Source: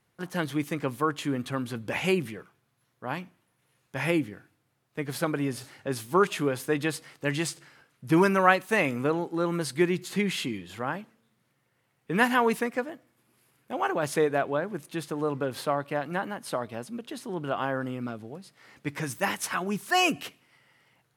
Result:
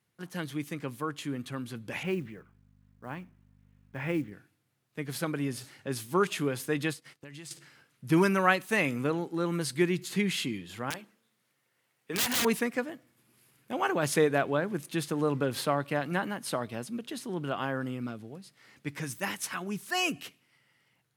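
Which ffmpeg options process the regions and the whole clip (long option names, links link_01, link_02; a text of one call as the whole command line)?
ffmpeg -i in.wav -filter_complex "[0:a]asettb=1/sr,asplit=3[link_01][link_02][link_03];[link_01]atrim=end=2.034[link_04];[link_02]atrim=start=2.03:end=4.32,asetpts=PTS-STARTPTS,afade=type=in:duration=0.004:curve=qsin,afade=type=out:start_time=2.286:duration=0.004:curve=qsin,lowpass=2100,aeval=exprs='val(0)+0.00224*(sin(2*PI*50*n/s)+sin(2*PI*2*50*n/s)/2+sin(2*PI*3*50*n/s)/3+sin(2*PI*4*50*n/s)/4+sin(2*PI*5*50*n/s)/5)':channel_layout=same,acrusher=bits=8:mode=log:mix=0:aa=0.000001[link_05];[link_03]atrim=start=4.316[link_06];[link_04][link_05]acrossfade=duration=0.004:curve1=hsin:curve2=qsin[link_07];[link_07][link_06]acrossfade=duration=0.004:curve1=qsin:curve2=hsin,asettb=1/sr,asplit=3[link_08][link_09][link_10];[link_08]atrim=end=6.934[link_11];[link_09]atrim=start=6.93:end=7.51,asetpts=PTS-STARTPTS,afade=type=in:duration=0.004:curve=qsin,afade=type=out:start_time=0.576:duration=0.004:curve=qsin,acompressor=threshold=-42dB:ratio=5:attack=3.2:release=140:knee=1:detection=peak,agate=range=-15dB:threshold=-52dB:ratio=16:release=100:detection=peak[link_12];[link_10]atrim=start=7.506[link_13];[link_11][link_12]acrossfade=duration=0.004:curve1=hsin:curve2=qsin[link_14];[link_14][link_13]acrossfade=duration=0.004:curve1=qsin:curve2=hsin,asettb=1/sr,asplit=3[link_15][link_16][link_17];[link_15]atrim=end=10.904[link_18];[link_16]atrim=start=10.9:end=12.45,asetpts=PTS-STARTPTS,afade=type=in:duration=0.004:curve=qsin,afade=type=out:start_time=1.546:duration=0.004:curve=qsin,bass=frequency=250:gain=-11,treble=frequency=4000:gain=1,bandreject=frequency=50:width_type=h:width=6,bandreject=frequency=100:width_type=h:width=6,bandreject=frequency=150:width_type=h:width=6,bandreject=frequency=200:width_type=h:width=6,bandreject=frequency=250:width_type=h:width=6,bandreject=frequency=300:width_type=h:width=6,bandreject=frequency=350:width_type=h:width=6,aeval=exprs='(mod(13.3*val(0)+1,2)-1)/13.3':channel_layout=same[link_19];[link_17]atrim=start=12.446[link_20];[link_18][link_19]acrossfade=duration=0.004:curve1=hsin:curve2=qsin[link_21];[link_21][link_20]acrossfade=duration=0.004:curve1=qsin:curve2=hsin,dynaudnorm=framelen=730:gausssize=13:maxgain=11.5dB,highpass=82,equalizer=frequency=750:width_type=o:width=2.3:gain=-6,volume=-3.5dB" out.wav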